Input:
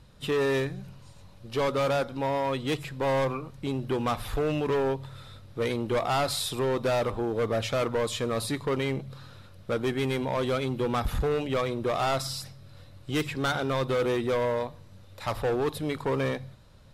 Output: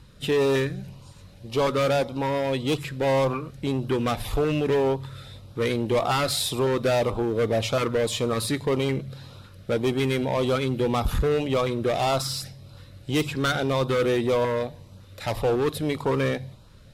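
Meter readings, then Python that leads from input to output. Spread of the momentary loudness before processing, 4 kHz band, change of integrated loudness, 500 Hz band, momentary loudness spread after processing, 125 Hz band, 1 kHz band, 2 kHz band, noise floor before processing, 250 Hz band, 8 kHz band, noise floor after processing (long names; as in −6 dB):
9 LU, +4.5 dB, +3.5 dB, +4.0 dB, 9 LU, +4.5 dB, +2.0 dB, +3.0 dB, −51 dBFS, +4.5 dB, +4.5 dB, −49 dBFS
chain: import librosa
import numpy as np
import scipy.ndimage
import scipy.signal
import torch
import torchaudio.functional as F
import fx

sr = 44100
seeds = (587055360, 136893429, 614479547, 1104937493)

y = fx.filter_lfo_notch(x, sr, shape='saw_up', hz=1.8, low_hz=600.0, high_hz=2100.0, q=2.0)
y = fx.cheby_harmonics(y, sr, harmonics=(8,), levels_db=(-32,), full_scale_db=-18.0)
y = y * librosa.db_to_amplitude(4.5)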